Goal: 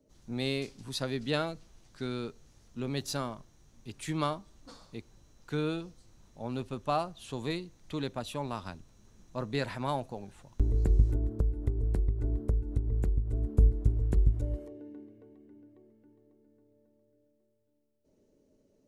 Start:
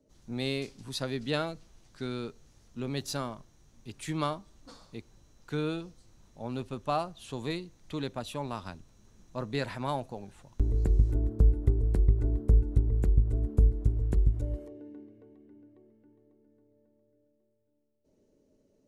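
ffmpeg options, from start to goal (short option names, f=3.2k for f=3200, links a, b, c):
-filter_complex "[0:a]asettb=1/sr,asplit=3[a][b][c];[a]atrim=end=11.144[d];[b]atrim=start=11.14:end=13.55,asetpts=PTS-STARTPTS,afade=t=in:d=0.004:c=qsin,afade=t=out:st=2.406:d=0.004:c=qsin,acompressor=threshold=-25dB:ratio=5[e];[c]atrim=start=13.546[f];[d][e]acrossfade=d=0.004:c1=hsin:c2=qsin[g];[g][f]acrossfade=d=0.004:c1=qsin:c2=hsin"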